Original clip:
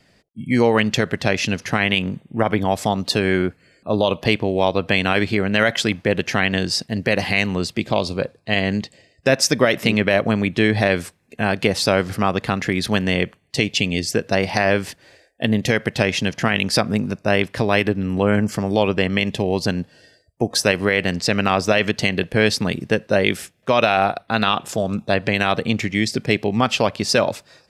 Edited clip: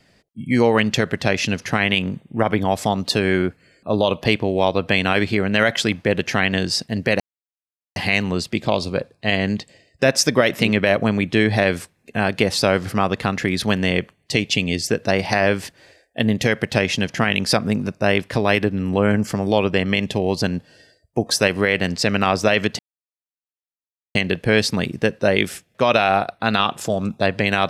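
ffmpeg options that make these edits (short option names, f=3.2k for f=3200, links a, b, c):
-filter_complex "[0:a]asplit=3[a][b][c];[a]atrim=end=7.2,asetpts=PTS-STARTPTS,afade=t=out:st=7.196:d=0.004:c=hsin,apad=pad_dur=0.76[d];[b]atrim=start=7.2:end=22.03,asetpts=PTS-STARTPTS,afade=t=in:d=0.004:c=hsin,afade=t=out:st=14.826:d=0.004:c=hsin,apad=pad_dur=1.36[e];[c]atrim=start=22.03,asetpts=PTS-STARTPTS,afade=t=in:d=0.004:c=hsin[f];[d][e][f]concat=n=3:v=0:a=1"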